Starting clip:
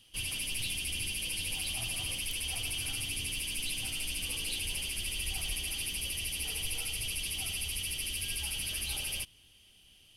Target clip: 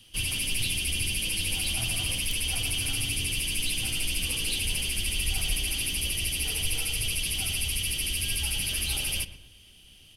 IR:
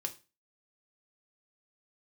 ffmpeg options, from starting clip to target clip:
-filter_complex "[0:a]lowshelf=f=350:g=3.5,acrossover=split=390|790|2700[a][b][c][d];[b]acrusher=samples=20:mix=1:aa=0.000001[e];[a][e][c][d]amix=inputs=4:normalize=0,asplit=2[f][g];[g]adelay=119,lowpass=f=1.8k:p=1,volume=-12dB,asplit=2[h][i];[i]adelay=119,lowpass=f=1.8k:p=1,volume=0.39,asplit=2[j][k];[k]adelay=119,lowpass=f=1.8k:p=1,volume=0.39,asplit=2[l][m];[m]adelay=119,lowpass=f=1.8k:p=1,volume=0.39[n];[f][h][j][l][n]amix=inputs=5:normalize=0,volume=6dB"

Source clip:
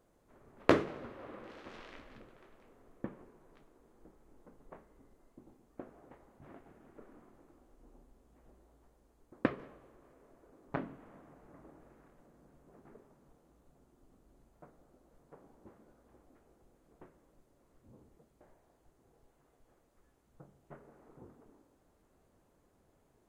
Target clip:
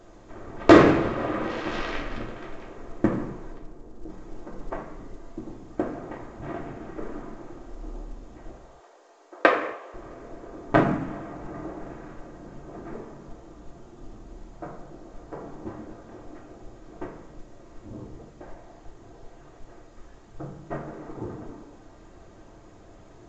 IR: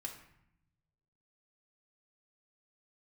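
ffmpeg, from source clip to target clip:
-filter_complex "[0:a]asplit=3[a][b][c];[a]afade=t=out:st=3.52:d=0.02[d];[b]equalizer=f=3k:w=0.3:g=-12.5,afade=t=in:st=3.52:d=0.02,afade=t=out:st=4.08:d=0.02[e];[c]afade=t=in:st=4.08:d=0.02[f];[d][e][f]amix=inputs=3:normalize=0,asettb=1/sr,asplit=3[g][h][i];[g]atrim=end=8.524[j];[h]atrim=start=8.52:end=9.94,asetpts=PTS-STARTPTS,afade=t=in:d=0.004:c=qsin,afade=t=out:st=1.416:d=0.004:c=qsin,highpass=f=460:w=0.5412,highpass=f=460:w=1.3066[k];[i]atrim=start=9.936[l];[j][k]acrossfade=d=0.004:c1=hsin:c2=qsin[m];[m][l]acrossfade=d=0.004:c1=qsin:c2=hsin,asoftclip=type=tanh:threshold=-17.5dB[n];[1:a]atrim=start_sample=2205,afade=t=out:st=0.33:d=0.01,atrim=end_sample=14994[o];[n][o]afir=irnorm=-1:irlink=0,alimiter=level_in=23.5dB:limit=-1dB:release=50:level=0:latency=1,volume=-1dB" -ar 16000 -c:a pcm_mulaw

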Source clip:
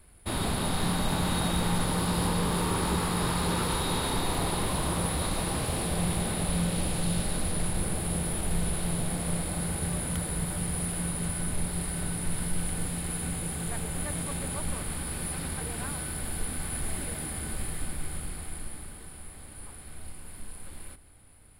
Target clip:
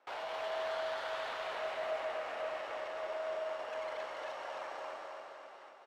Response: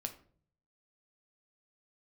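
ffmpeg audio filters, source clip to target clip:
-af "highpass=f=160:w=0.5412,highpass=f=160:w=1.3066,alimiter=level_in=4.5dB:limit=-24dB:level=0:latency=1,volume=-4.5dB,asetrate=162288,aresample=44100,adynamicsmooth=sensitivity=2.5:basefreq=1.8k,aecho=1:1:266|532|798|1064|1330|1596|1862:0.668|0.348|0.181|0.094|0.0489|0.0254|0.0132"

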